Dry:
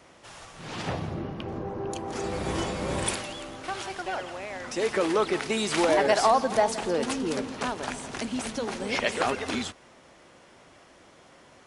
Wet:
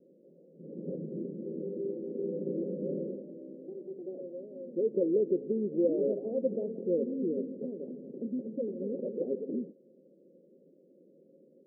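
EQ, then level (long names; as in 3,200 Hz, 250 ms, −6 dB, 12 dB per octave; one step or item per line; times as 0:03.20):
linear-phase brick-wall high-pass 160 Hz
Chebyshev low-pass with heavy ripple 550 Hz, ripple 3 dB
0.0 dB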